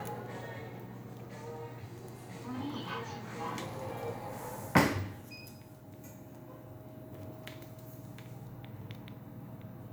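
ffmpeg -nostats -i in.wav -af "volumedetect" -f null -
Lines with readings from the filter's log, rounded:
mean_volume: -39.7 dB
max_volume: -10.1 dB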